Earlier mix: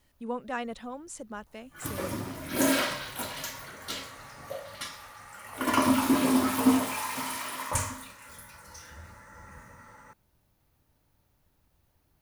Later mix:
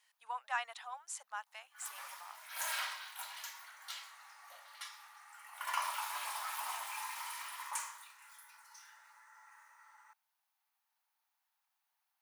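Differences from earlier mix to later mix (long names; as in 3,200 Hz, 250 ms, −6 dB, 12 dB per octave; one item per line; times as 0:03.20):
background −8.5 dB
master: add elliptic high-pass filter 800 Hz, stop band 60 dB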